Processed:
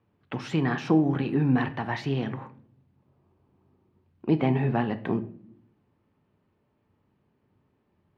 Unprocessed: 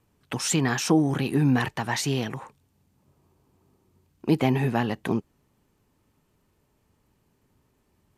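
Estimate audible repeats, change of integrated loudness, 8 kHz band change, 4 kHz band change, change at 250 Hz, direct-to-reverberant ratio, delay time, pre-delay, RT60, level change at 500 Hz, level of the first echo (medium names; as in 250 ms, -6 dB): no echo, -1.5 dB, under -20 dB, -9.5 dB, -1.0 dB, 10.5 dB, no echo, 3 ms, 0.60 s, -1.5 dB, no echo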